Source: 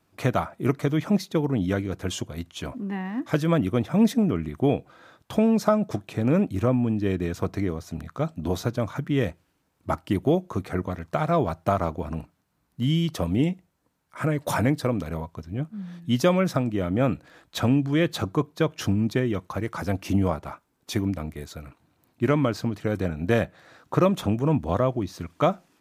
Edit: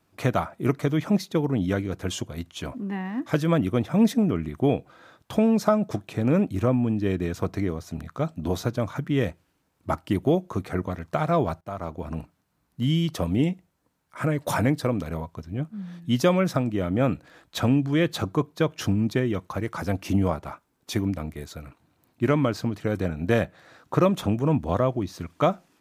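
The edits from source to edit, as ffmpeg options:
ffmpeg -i in.wav -filter_complex "[0:a]asplit=2[link_01][link_02];[link_01]atrim=end=11.61,asetpts=PTS-STARTPTS,afade=type=out:start_time=11.606:duration=0.004:curve=hsin:silence=0.105925[link_03];[link_02]atrim=start=11.61,asetpts=PTS-STARTPTS,afade=type=in:duration=0.58:silence=0.105925[link_04];[link_03][link_04]concat=n=2:v=0:a=1" out.wav

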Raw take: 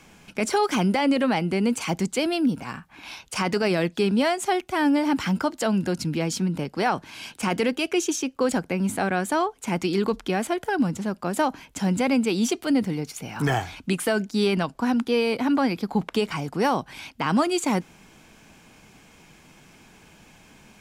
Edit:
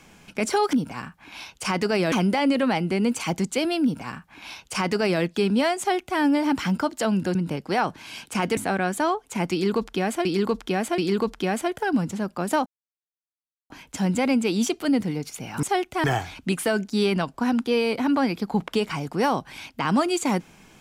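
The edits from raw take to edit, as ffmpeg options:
ffmpeg -i in.wav -filter_complex "[0:a]asplit=10[link_01][link_02][link_03][link_04][link_05][link_06][link_07][link_08][link_09][link_10];[link_01]atrim=end=0.732[link_11];[link_02]atrim=start=2.438:end=3.832[link_12];[link_03]atrim=start=0.728:end=5.962[link_13];[link_04]atrim=start=6.428:end=7.652[link_14];[link_05]atrim=start=8.888:end=10.572[link_15];[link_06]atrim=start=9.838:end=10.572[link_16];[link_07]atrim=start=9.838:end=11.52,asetpts=PTS-STARTPTS,afade=type=out:start_time=1.678:duration=0.004:curve=hsin,apad=pad_dur=1.04[link_17];[link_08]atrim=start=11.52:end=13.452,asetpts=PTS-STARTPTS,afade=type=in:duration=0.004:curve=hsin[link_18];[link_09]atrim=start=4.398:end=4.812[link_19];[link_10]atrim=start=13.448[link_20];[link_11][link_12]acrossfade=duration=0.004:curve1=hsin:curve2=hsin[link_21];[link_21][link_13]acrossfade=duration=0.004:curve1=hsin:curve2=hsin[link_22];[link_22][link_14]acrossfade=duration=0.004:curve1=hsin:curve2=hsin[link_23];[link_23][link_15]acrossfade=duration=0.004:curve1=hsin:curve2=hsin[link_24];[link_24][link_16]acrossfade=duration=0.004:curve1=hsin:curve2=hsin[link_25];[link_17][link_18]concat=n=2:v=0:a=1[link_26];[link_25][link_26]acrossfade=duration=0.004:curve1=hsin:curve2=hsin[link_27];[link_27][link_19]acrossfade=duration=0.004:curve1=hsin:curve2=hsin[link_28];[link_28][link_20]acrossfade=duration=0.004:curve1=hsin:curve2=hsin" out.wav

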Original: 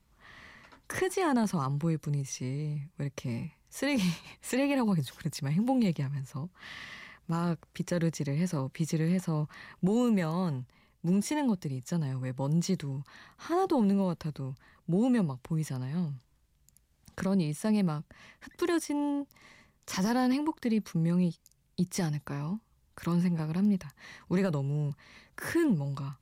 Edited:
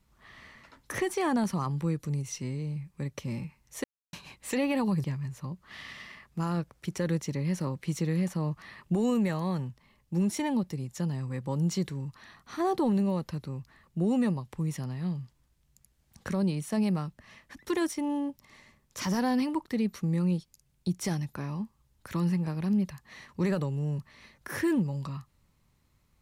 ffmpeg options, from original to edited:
ffmpeg -i in.wav -filter_complex "[0:a]asplit=4[link_01][link_02][link_03][link_04];[link_01]atrim=end=3.84,asetpts=PTS-STARTPTS,afade=type=out:start_time=3.836:duration=0.004:curve=hsin[link_05];[link_02]atrim=start=3.84:end=4.13,asetpts=PTS-STARTPTS,volume=0[link_06];[link_03]atrim=start=4.13:end=5.042,asetpts=PTS-STARTPTS,afade=type=in:duration=0.004:curve=hsin[link_07];[link_04]atrim=start=5.958[link_08];[link_05][link_06][link_07]concat=n=3:v=0:a=1[link_09];[link_09][link_08]acrossfade=duration=0.004:curve1=hsin:curve2=hsin" out.wav

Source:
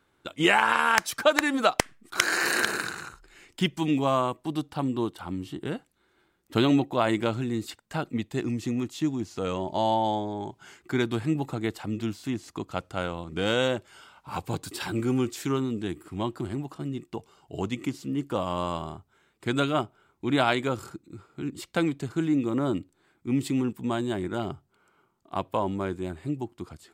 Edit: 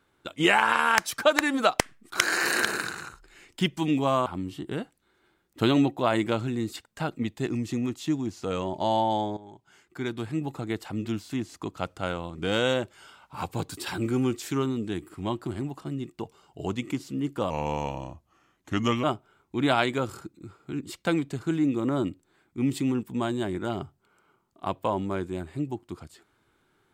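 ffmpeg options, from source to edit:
ffmpeg -i in.wav -filter_complex "[0:a]asplit=5[link_01][link_02][link_03][link_04][link_05];[link_01]atrim=end=4.262[link_06];[link_02]atrim=start=5.198:end=10.31,asetpts=PTS-STARTPTS,afade=type=out:start_time=5.108:duration=0.004:curve=hsin:silence=0.177828[link_07];[link_03]atrim=start=10.31:end=18.444,asetpts=PTS-STARTPTS,afade=type=in:duration=1.69:silence=0.177828[link_08];[link_04]atrim=start=18.44:end=19.73,asetpts=PTS-STARTPTS,asetrate=37044,aresample=44100[link_09];[link_05]atrim=start=19.726[link_10];[link_07][link_08]concat=n=2:v=0:a=1[link_11];[link_06][link_11]acrossfade=duration=0.004:curve1=hsin:curve2=hsin[link_12];[link_12][link_09]acrossfade=duration=0.004:curve1=hsin:curve2=hsin[link_13];[link_13][link_10]acrossfade=duration=0.004:curve1=hsin:curve2=hsin" out.wav

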